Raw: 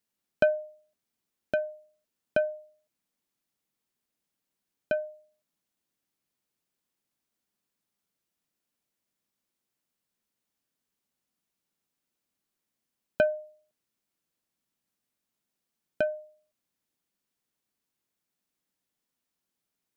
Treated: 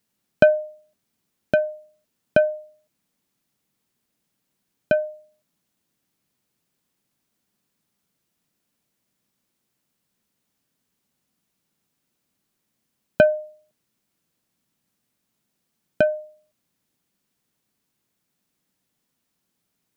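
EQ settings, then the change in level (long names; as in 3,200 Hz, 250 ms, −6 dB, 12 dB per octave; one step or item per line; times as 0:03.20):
parametric band 140 Hz +6.5 dB 1.9 octaves
+8.0 dB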